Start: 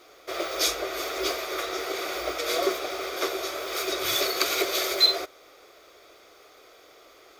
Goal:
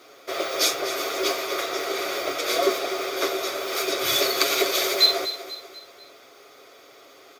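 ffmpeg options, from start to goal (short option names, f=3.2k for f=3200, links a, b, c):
-filter_complex "[0:a]highpass=f=91:w=0.5412,highpass=f=91:w=1.3066,equalizer=f=240:w=4.4:g=5,aecho=1:1:7.3:0.38,asplit=2[a][b];[b]aecho=0:1:245|490|735|980:0.237|0.107|0.048|0.0216[c];[a][c]amix=inputs=2:normalize=0,volume=2.5dB"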